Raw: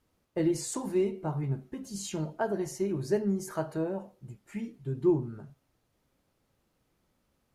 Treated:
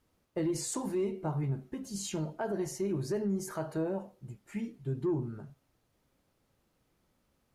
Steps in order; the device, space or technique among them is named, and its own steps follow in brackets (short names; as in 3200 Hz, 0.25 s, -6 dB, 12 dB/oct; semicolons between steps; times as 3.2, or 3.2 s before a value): soft clipper into limiter (soft clip -17 dBFS, distortion -23 dB; limiter -25 dBFS, peak gain reduction 6 dB)